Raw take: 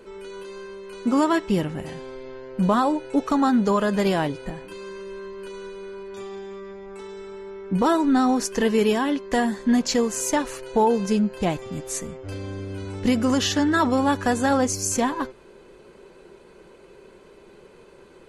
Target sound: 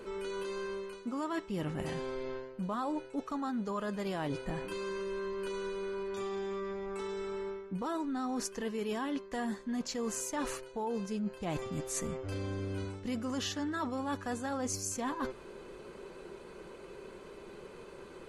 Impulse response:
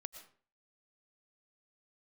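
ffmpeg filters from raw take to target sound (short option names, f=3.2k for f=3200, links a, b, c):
-af "equalizer=f=1.2k:t=o:w=0.26:g=4,areverse,acompressor=threshold=-33dB:ratio=10,areverse"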